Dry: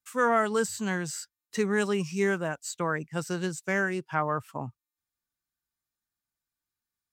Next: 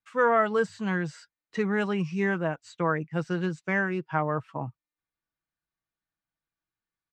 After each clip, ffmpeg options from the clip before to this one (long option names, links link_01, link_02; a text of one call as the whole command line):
ffmpeg -i in.wav -af "lowpass=2800,aecho=1:1:6.2:0.4,volume=1dB" out.wav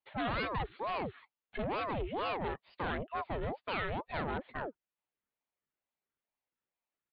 ffmpeg -i in.wav -af "aresample=8000,asoftclip=type=tanh:threshold=-29dB,aresample=44100,aeval=exprs='val(0)*sin(2*PI*560*n/s+560*0.65/2.2*sin(2*PI*2.2*n/s))':channel_layout=same" out.wav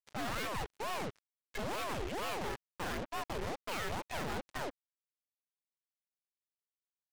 ffmpeg -i in.wav -af "acrusher=bits=6:mix=0:aa=0.5,aeval=exprs='(tanh(200*val(0)+0.6)-tanh(0.6))/200':channel_layout=same,volume=9.5dB" out.wav